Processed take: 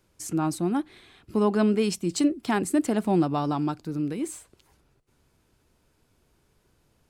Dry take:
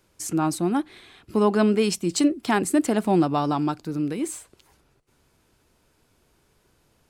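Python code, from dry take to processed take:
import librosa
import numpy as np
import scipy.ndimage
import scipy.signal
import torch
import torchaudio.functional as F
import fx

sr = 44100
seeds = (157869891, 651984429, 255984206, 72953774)

y = fx.low_shelf(x, sr, hz=270.0, db=4.5)
y = y * librosa.db_to_amplitude(-4.5)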